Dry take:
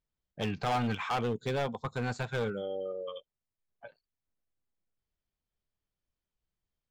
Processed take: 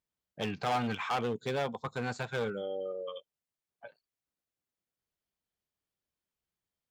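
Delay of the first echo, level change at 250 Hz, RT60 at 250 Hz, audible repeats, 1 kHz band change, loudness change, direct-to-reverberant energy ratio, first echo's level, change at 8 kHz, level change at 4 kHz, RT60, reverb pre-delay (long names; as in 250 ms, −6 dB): no echo audible, −2.0 dB, no reverb audible, no echo audible, 0.0 dB, −1.0 dB, no reverb audible, no echo audible, 0.0 dB, 0.0 dB, no reverb audible, no reverb audible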